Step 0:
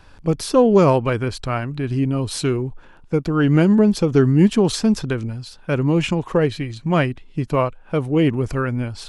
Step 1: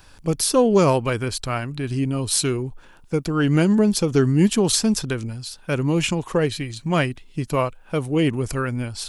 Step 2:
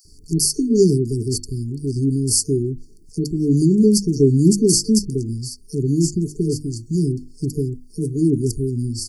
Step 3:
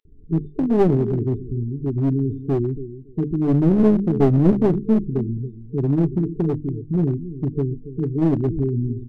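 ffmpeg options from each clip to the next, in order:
-af "aemphasis=mode=production:type=75kf,volume=0.708"
-filter_complex "[0:a]bandreject=f=50:t=h:w=6,bandreject=f=100:t=h:w=6,bandreject=f=150:t=h:w=6,bandreject=f=200:t=h:w=6,bandreject=f=250:t=h:w=6,bandreject=f=300:t=h:w=6,bandreject=f=350:t=h:w=6,acrossover=split=1500[s0][s1];[s0]adelay=50[s2];[s2][s1]amix=inputs=2:normalize=0,afftfilt=real='re*(1-between(b*sr/4096,450,4400))':imag='im*(1-between(b*sr/4096,450,4400))':win_size=4096:overlap=0.75,volume=1.58"
-af "aresample=8000,aresample=44100,aecho=1:1:281|562:0.211|0.0338,aeval=exprs='clip(val(0),-1,0.126)':c=same"

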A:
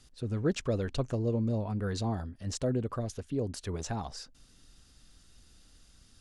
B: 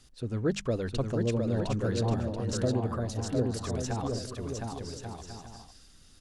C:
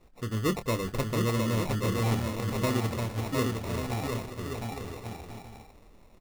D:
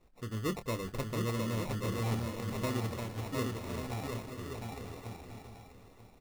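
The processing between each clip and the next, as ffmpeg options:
-af "bandreject=f=50:t=h:w=6,bandreject=f=100:t=h:w=6,bandreject=f=150:t=h:w=6,bandreject=f=200:t=h:w=6,aecho=1:1:710|1136|1392|1545|1637:0.631|0.398|0.251|0.158|0.1,volume=1.12"
-filter_complex "[0:a]acrusher=samples=28:mix=1:aa=0.000001,asplit=2[s0][s1];[s1]adelay=27,volume=0.299[s2];[s0][s2]amix=inputs=2:normalize=0"
-af "aecho=1:1:938|1876|2814:0.2|0.0579|0.0168,volume=0.473"

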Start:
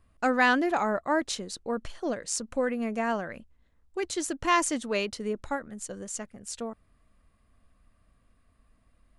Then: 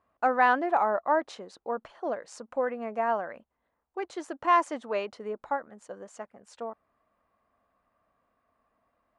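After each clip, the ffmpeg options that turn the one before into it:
-af "bandpass=f=830:t=q:w=1.4:csg=0,volume=1.68"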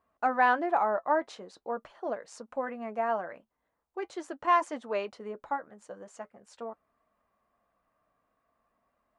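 -af "flanger=delay=4.3:depth=2.5:regen=-61:speed=0.43:shape=triangular,volume=1.26"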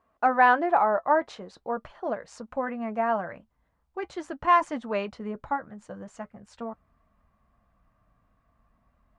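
-af "lowpass=f=3800:p=1,asubboost=boost=7.5:cutoff=150,volume=1.88"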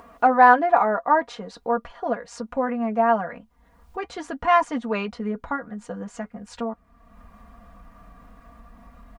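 -filter_complex "[0:a]aecho=1:1:4.2:0.7,asplit=2[s0][s1];[s1]acompressor=mode=upward:threshold=0.0447:ratio=2.5,volume=0.944[s2];[s0][s2]amix=inputs=2:normalize=0,volume=0.708"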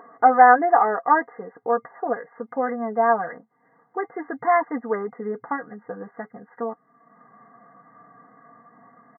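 -af "afftfilt=real='re*between(b*sr/4096,110,2100)':imag='im*between(b*sr/4096,110,2100)':win_size=4096:overlap=0.75,aecho=1:1:2.5:0.53"

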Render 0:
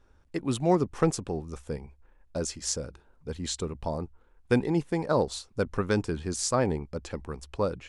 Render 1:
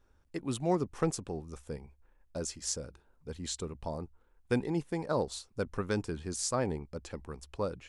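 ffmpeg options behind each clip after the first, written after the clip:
-af "highshelf=f=8700:g=6,volume=0.501"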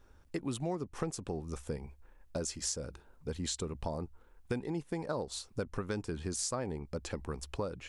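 -af "acompressor=threshold=0.01:ratio=5,volume=2.11"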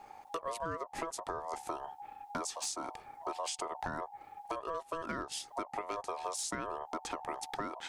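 -af "acompressor=threshold=0.00562:ratio=3,asoftclip=type=hard:threshold=0.0158,aeval=exprs='val(0)*sin(2*PI*820*n/s)':c=same,volume=3.16"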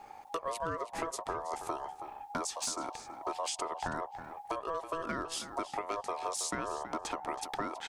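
-filter_complex "[0:a]asplit=2[s0][s1];[s1]adelay=324,lowpass=f=4300:p=1,volume=0.282,asplit=2[s2][s3];[s3]adelay=324,lowpass=f=4300:p=1,volume=0.17[s4];[s0][s2][s4]amix=inputs=3:normalize=0,volume=1.26"

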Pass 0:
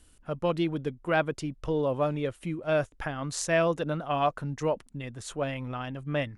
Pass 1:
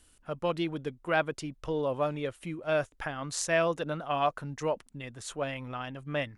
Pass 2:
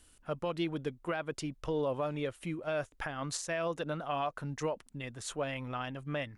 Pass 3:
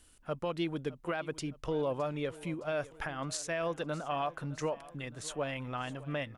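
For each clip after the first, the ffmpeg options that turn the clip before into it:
-af "lowshelf=f=440:g=-6"
-af "alimiter=level_in=1.06:limit=0.0631:level=0:latency=1:release=168,volume=0.944"
-af "aecho=1:1:614|1228|1842|2456:0.112|0.0606|0.0327|0.0177"

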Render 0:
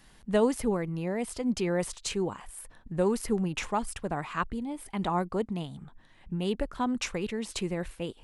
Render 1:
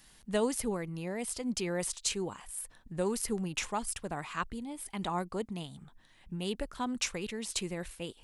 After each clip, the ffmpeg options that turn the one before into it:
-af "highshelf=f=2900:g=11,volume=0.501"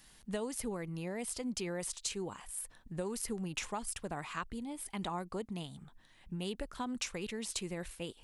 -af "acompressor=threshold=0.0224:ratio=6,volume=0.891"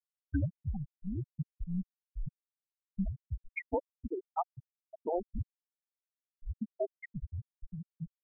-af "asubboost=boost=5:cutoff=110,highpass=f=370:t=q:w=0.5412,highpass=f=370:t=q:w=1.307,lowpass=f=2700:t=q:w=0.5176,lowpass=f=2700:t=q:w=0.7071,lowpass=f=2700:t=q:w=1.932,afreqshift=-350,afftfilt=real='re*gte(hypot(re,im),0.0501)':imag='im*gte(hypot(re,im),0.0501)':win_size=1024:overlap=0.75,volume=2.99"

